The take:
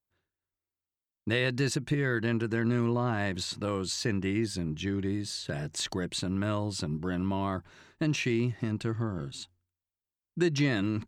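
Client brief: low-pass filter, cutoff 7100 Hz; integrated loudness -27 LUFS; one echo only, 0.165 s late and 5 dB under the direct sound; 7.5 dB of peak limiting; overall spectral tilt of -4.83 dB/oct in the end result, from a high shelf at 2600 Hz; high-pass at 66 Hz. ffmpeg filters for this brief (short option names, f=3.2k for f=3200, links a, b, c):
-af "highpass=66,lowpass=7.1k,highshelf=f=2.6k:g=4,alimiter=limit=-20.5dB:level=0:latency=1,aecho=1:1:165:0.562,volume=4dB"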